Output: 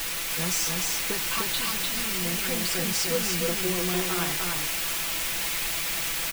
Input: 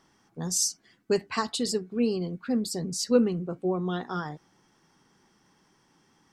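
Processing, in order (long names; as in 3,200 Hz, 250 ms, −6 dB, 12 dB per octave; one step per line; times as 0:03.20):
low-shelf EQ 360 Hz −7 dB
downward compressor, threshold −32 dBFS, peak gain reduction 13 dB
0:01.22–0:02.25: phaser with its sweep stopped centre 2,000 Hz, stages 6
bit-depth reduction 6 bits, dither triangular
parametric band 2,400 Hz +6.5 dB 0.98 octaves
single-tap delay 300 ms −3 dB
background noise brown −50 dBFS
comb filter 6 ms, depth 67%
level +2.5 dB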